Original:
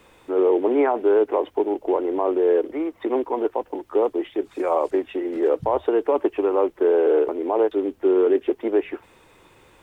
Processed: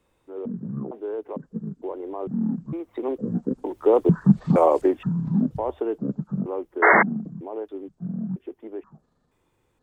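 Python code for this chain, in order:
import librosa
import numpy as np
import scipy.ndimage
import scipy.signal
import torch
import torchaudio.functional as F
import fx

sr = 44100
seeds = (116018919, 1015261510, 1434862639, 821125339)

y = fx.pitch_trill(x, sr, semitones=-12.0, every_ms=465)
y = fx.doppler_pass(y, sr, speed_mps=8, closest_m=2.6, pass_at_s=4.34)
y = fx.high_shelf(y, sr, hz=2200.0, db=-9.5)
y = fx.spec_paint(y, sr, seeds[0], shape='noise', start_s=6.82, length_s=0.21, low_hz=310.0, high_hz=2200.0, level_db=-22.0)
y = fx.bass_treble(y, sr, bass_db=5, treble_db=10)
y = F.gain(torch.from_numpy(y), 7.0).numpy()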